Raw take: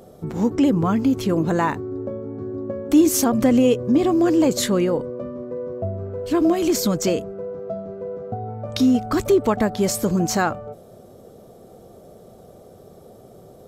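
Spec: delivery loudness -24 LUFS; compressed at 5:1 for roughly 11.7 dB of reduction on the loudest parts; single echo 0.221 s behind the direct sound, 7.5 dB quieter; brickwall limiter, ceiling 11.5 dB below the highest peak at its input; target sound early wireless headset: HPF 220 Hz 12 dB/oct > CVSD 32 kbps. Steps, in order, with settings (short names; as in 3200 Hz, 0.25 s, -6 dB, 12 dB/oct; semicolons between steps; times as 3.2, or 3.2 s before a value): compressor 5:1, threshold -25 dBFS; limiter -21 dBFS; HPF 220 Hz 12 dB/oct; echo 0.221 s -7.5 dB; CVSD 32 kbps; gain +7.5 dB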